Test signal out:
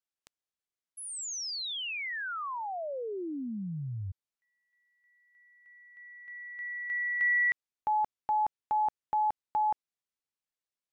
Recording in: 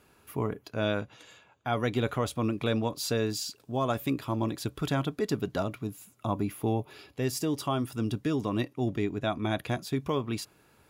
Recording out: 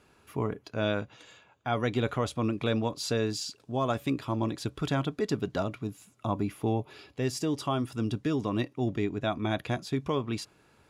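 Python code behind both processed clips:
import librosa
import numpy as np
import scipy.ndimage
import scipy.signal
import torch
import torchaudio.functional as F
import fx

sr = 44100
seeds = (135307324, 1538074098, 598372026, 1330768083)

y = scipy.signal.sosfilt(scipy.signal.butter(2, 8500.0, 'lowpass', fs=sr, output='sos'), x)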